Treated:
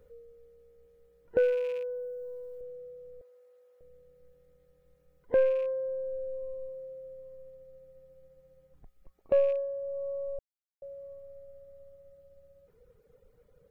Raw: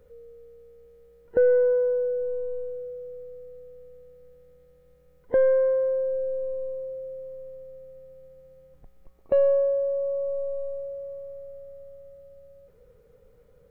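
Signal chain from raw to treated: rattle on loud lows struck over -37 dBFS, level -35 dBFS; reverb removal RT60 0.89 s; 1.38–2.61 s: tilt EQ +2 dB/octave; 3.21–3.81 s: resonant high-pass 850 Hz, resonance Q 1.8; 10.39–10.82 s: mute; trim -3 dB

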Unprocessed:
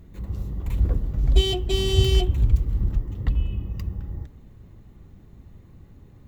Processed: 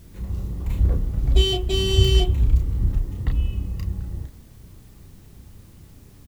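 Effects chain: doubling 32 ms -4.5 dB; added noise white -59 dBFS

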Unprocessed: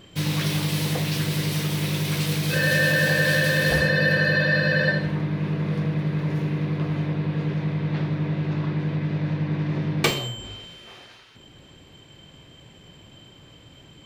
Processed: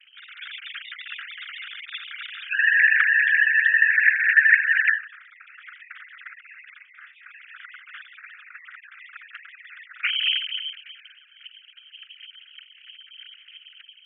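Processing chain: formants replaced by sine waves; level rider gain up to 7 dB; steep high-pass 1.4 kHz 96 dB/octave; whisper effect; 6.82–7.24 s: detune thickener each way 33 cents -> 18 cents; trim -4 dB

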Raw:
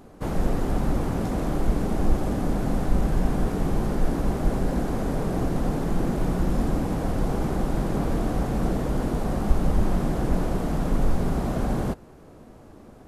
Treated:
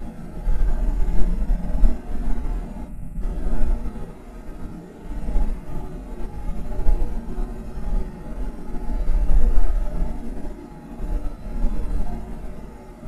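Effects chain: Paulstretch 9.8×, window 0.05 s, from 3.07 s; time-frequency box 2.87–3.21 s, 260–7400 Hz -16 dB; mains buzz 120 Hz, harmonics 24, -42 dBFS -6 dB/octave; in parallel at -7 dB: hard clipper -29 dBFS, distortion -4 dB; on the sum: reverberation, pre-delay 4 ms, DRR -3 dB; upward expansion 1.5:1, over -17 dBFS; trim -10 dB

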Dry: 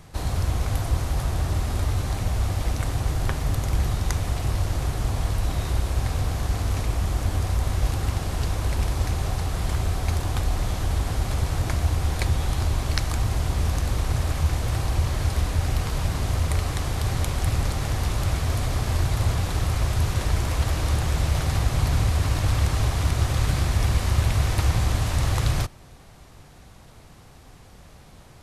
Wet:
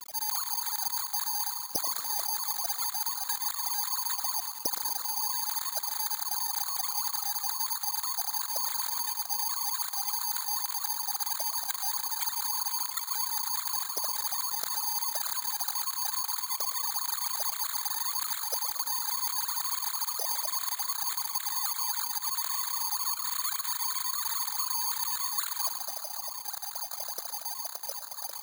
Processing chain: formants replaced by sine waves; low-pass 1.5 kHz 12 dB/octave; bass shelf 470 Hz +9.5 dB; reverse; compression 20:1, threshold -33 dBFS, peak gain reduction 28.5 dB; reverse; word length cut 8-bit, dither none; frequency-shifting echo 116 ms, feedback 62%, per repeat +45 Hz, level -14 dB; on a send at -16.5 dB: reverberation RT60 4.2 s, pre-delay 93 ms; on the sum: careless resampling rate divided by 8×, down filtered, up zero stuff; trim -5 dB

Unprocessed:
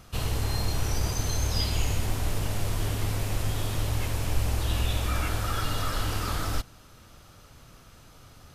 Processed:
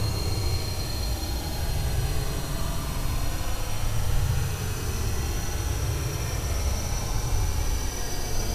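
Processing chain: Paulstretch 29×, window 0.05 s, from 0.68 s

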